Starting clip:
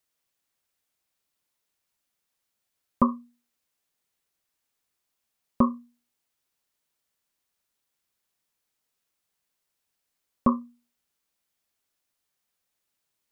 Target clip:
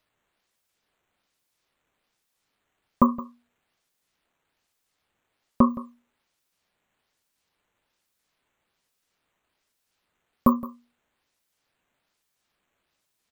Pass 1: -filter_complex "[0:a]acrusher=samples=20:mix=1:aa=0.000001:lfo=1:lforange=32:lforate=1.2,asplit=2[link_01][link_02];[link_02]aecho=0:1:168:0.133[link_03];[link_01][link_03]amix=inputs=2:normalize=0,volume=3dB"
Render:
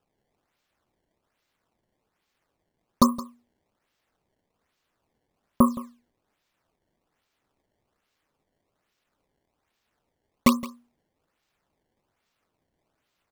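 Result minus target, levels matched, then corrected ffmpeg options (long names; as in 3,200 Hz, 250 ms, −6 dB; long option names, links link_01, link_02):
sample-and-hold swept by an LFO: distortion +15 dB
-filter_complex "[0:a]acrusher=samples=5:mix=1:aa=0.000001:lfo=1:lforange=8:lforate=1.2,asplit=2[link_01][link_02];[link_02]aecho=0:1:168:0.133[link_03];[link_01][link_03]amix=inputs=2:normalize=0,volume=3dB"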